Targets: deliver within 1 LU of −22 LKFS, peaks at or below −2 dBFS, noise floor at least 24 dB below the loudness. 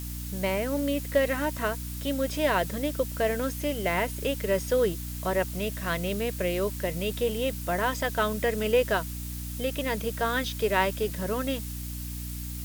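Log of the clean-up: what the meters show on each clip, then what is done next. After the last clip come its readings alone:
mains hum 60 Hz; hum harmonics up to 300 Hz; level of the hum −34 dBFS; background noise floor −36 dBFS; target noise floor −53 dBFS; integrated loudness −28.5 LKFS; sample peak −9.0 dBFS; target loudness −22.0 LKFS
→ mains-hum notches 60/120/180/240/300 Hz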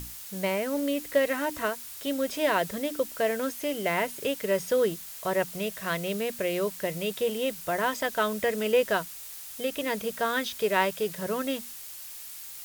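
mains hum none found; background noise floor −42 dBFS; target noise floor −53 dBFS
→ broadband denoise 11 dB, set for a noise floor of −42 dBFS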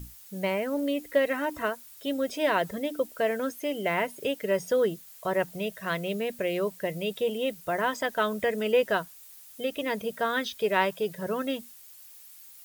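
background noise floor −50 dBFS; target noise floor −53 dBFS
→ broadband denoise 6 dB, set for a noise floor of −50 dBFS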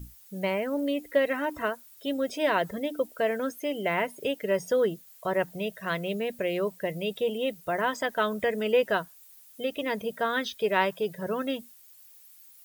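background noise floor −54 dBFS; integrated loudness −29.0 LKFS; sample peak −9.5 dBFS; target loudness −22.0 LKFS
→ level +7 dB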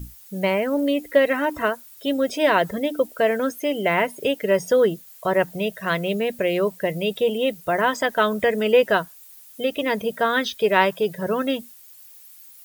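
integrated loudness −22.0 LKFS; sample peak −2.5 dBFS; background noise floor −47 dBFS

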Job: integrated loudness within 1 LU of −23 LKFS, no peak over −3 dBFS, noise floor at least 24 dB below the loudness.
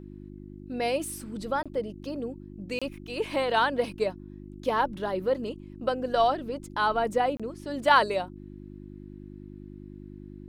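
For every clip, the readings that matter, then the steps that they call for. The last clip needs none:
number of dropouts 3; longest dropout 26 ms; mains hum 50 Hz; hum harmonics up to 350 Hz; level of the hum −42 dBFS; integrated loudness −28.5 LKFS; sample peak −9.0 dBFS; target loudness −23.0 LKFS
→ repair the gap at 0:01.63/0:02.79/0:07.37, 26 ms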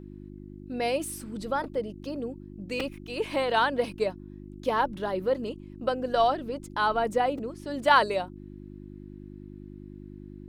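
number of dropouts 0; mains hum 50 Hz; hum harmonics up to 350 Hz; level of the hum −42 dBFS
→ hum removal 50 Hz, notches 7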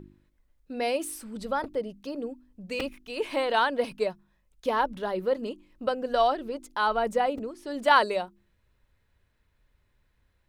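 mains hum none found; integrated loudness −28.5 LKFS; sample peak −9.0 dBFS; target loudness −23.0 LKFS
→ level +5.5 dB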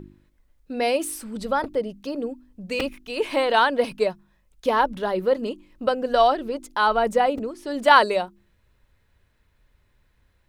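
integrated loudness −23.0 LKFS; sample peak −3.5 dBFS; background noise floor −65 dBFS

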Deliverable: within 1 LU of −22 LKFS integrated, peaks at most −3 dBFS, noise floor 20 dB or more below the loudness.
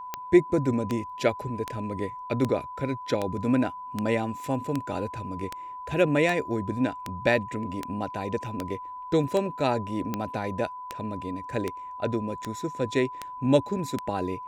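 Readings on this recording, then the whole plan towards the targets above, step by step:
number of clicks 19; interfering tone 1,000 Hz; level of the tone −36 dBFS; integrated loudness −28.5 LKFS; sample peak −7.0 dBFS; target loudness −22.0 LKFS
→ click removal
notch filter 1,000 Hz, Q 30
level +6.5 dB
brickwall limiter −3 dBFS

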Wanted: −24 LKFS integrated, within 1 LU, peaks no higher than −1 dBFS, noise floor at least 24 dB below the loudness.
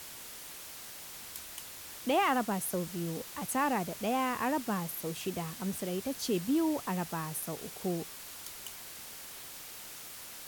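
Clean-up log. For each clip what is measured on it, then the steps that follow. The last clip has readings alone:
background noise floor −47 dBFS; target noise floor −59 dBFS; integrated loudness −35.0 LKFS; sample peak −19.0 dBFS; target loudness −24.0 LKFS
→ noise reduction from a noise print 12 dB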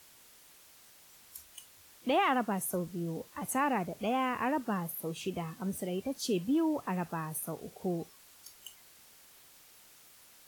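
background noise floor −59 dBFS; integrated loudness −33.5 LKFS; sample peak −19.0 dBFS; target loudness −24.0 LKFS
→ level +9.5 dB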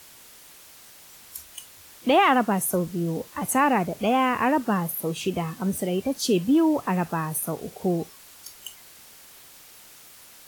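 integrated loudness −24.0 LKFS; sample peak −9.5 dBFS; background noise floor −49 dBFS

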